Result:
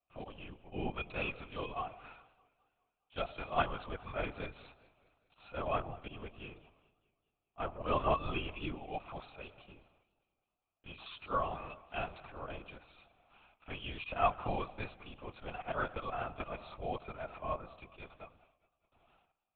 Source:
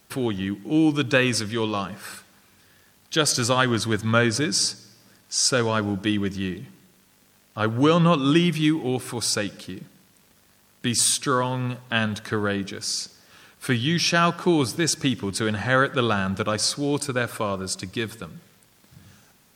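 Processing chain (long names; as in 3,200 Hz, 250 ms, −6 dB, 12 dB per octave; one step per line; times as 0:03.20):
noise gate −53 dBFS, range −19 dB
formant filter a
volume swells 101 ms
linear-prediction vocoder at 8 kHz whisper
feedback echo with a swinging delay time 205 ms, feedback 51%, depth 143 cents, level −22 dB
level +1 dB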